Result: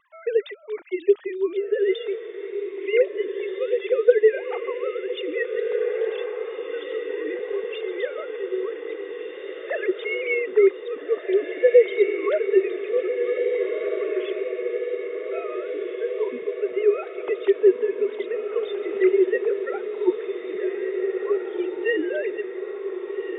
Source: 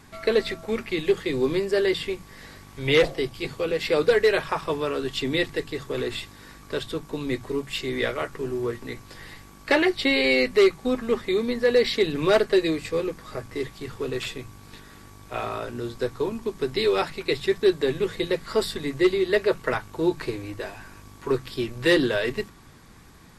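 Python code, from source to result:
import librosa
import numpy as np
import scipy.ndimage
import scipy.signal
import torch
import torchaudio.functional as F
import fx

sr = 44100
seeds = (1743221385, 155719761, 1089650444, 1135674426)

y = fx.sine_speech(x, sr)
y = fx.echo_diffused(y, sr, ms=1732, feedback_pct=62, wet_db=-6.0)
y = fx.wow_flutter(y, sr, seeds[0], rate_hz=2.1, depth_cents=18.0)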